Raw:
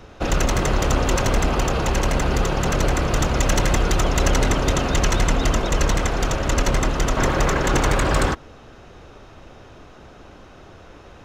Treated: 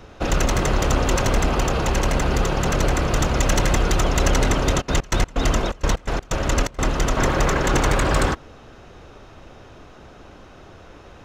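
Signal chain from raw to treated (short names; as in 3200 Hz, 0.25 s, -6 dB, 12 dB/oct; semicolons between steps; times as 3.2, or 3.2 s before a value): 4.8–6.86 step gate ".x.x.xxx" 126 bpm -24 dB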